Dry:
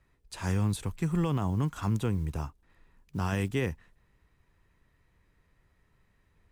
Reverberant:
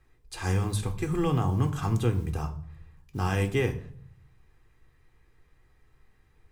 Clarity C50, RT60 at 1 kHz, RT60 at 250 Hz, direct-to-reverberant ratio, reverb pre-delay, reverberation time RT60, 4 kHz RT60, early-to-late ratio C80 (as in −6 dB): 14.0 dB, 0.55 s, 0.80 s, 6.5 dB, 3 ms, 0.55 s, 0.45 s, 17.0 dB